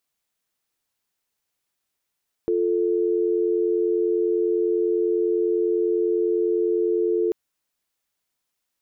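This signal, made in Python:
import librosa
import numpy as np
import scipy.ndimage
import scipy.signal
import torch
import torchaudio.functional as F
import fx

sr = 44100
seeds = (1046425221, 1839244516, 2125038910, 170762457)

y = fx.call_progress(sr, length_s=4.84, kind='dial tone', level_db=-21.5)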